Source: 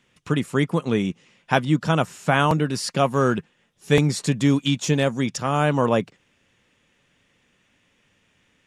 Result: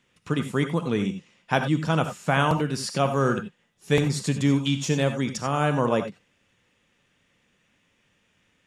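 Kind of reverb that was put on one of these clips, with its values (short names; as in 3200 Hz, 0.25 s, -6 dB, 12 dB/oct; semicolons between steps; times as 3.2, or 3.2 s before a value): non-linear reverb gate 0.11 s rising, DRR 7.5 dB; gain -3.5 dB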